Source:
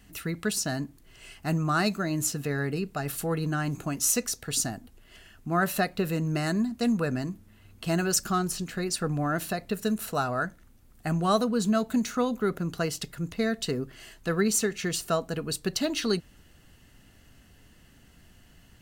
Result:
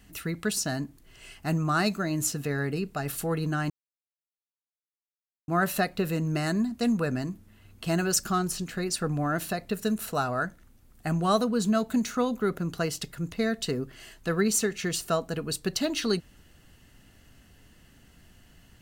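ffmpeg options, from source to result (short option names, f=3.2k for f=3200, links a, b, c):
-filter_complex "[0:a]asplit=3[a][b][c];[a]atrim=end=3.7,asetpts=PTS-STARTPTS,afade=t=out:st=3.696:d=0.004:c=hsin[d];[b]atrim=start=3.7:end=5.48,asetpts=PTS-STARTPTS,volume=0[e];[c]atrim=start=5.48,asetpts=PTS-STARTPTS,afade=t=in:d=0.004:c=hsin[f];[d][e][f]concat=n=3:v=0:a=1"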